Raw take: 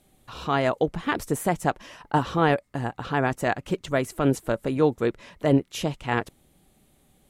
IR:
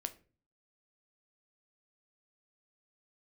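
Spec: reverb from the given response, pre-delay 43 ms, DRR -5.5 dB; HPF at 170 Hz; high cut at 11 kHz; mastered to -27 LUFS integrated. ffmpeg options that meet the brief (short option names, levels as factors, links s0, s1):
-filter_complex "[0:a]highpass=170,lowpass=11000,asplit=2[s0][s1];[1:a]atrim=start_sample=2205,adelay=43[s2];[s1][s2]afir=irnorm=-1:irlink=0,volume=2.24[s3];[s0][s3]amix=inputs=2:normalize=0,volume=0.422"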